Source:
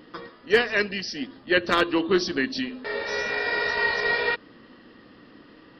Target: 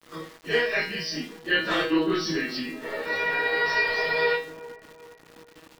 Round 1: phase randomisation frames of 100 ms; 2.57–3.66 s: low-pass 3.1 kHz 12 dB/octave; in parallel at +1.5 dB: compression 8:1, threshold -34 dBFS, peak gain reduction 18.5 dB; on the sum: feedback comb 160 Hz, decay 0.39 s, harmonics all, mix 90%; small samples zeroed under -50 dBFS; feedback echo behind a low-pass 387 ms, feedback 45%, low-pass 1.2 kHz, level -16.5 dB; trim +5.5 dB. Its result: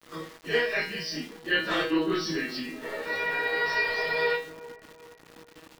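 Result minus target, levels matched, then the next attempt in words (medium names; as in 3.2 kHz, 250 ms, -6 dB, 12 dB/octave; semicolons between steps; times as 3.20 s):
compression: peak gain reduction +8.5 dB
phase randomisation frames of 100 ms; 2.57–3.66 s: low-pass 3.1 kHz 12 dB/octave; in parallel at +1.5 dB: compression 8:1, threshold -24.5 dBFS, peak gain reduction 10 dB; on the sum: feedback comb 160 Hz, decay 0.39 s, harmonics all, mix 90%; small samples zeroed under -50 dBFS; feedback echo behind a low-pass 387 ms, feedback 45%, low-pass 1.2 kHz, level -16.5 dB; trim +5.5 dB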